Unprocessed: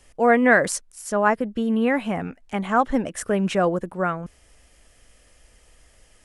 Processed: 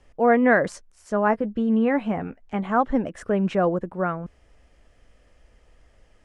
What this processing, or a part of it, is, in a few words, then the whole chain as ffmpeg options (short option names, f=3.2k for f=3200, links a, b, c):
through cloth: -filter_complex "[0:a]asettb=1/sr,asplit=3[a][b][c];[a]atrim=end=0.764[d];[b]atrim=start=0.76:end=2.71,asetpts=PTS-STARTPTS,afade=t=in:d=0.004:c=qsin,afade=t=out:st=1.946:d=0.004:c=qsin,asplit=2[e][f];[f]adelay=14,volume=-12dB[g];[e][g]amix=inputs=2:normalize=0,atrim=end_sample=85995[h];[c]atrim=start=2.706[i];[d][h]acrossfade=d=0.004:c1=hsin:c2=qsin[j];[j][i]acrossfade=d=0.004:c1=qsin:c2=hsin,lowpass=6.9k,highshelf=f=2.4k:g=-12"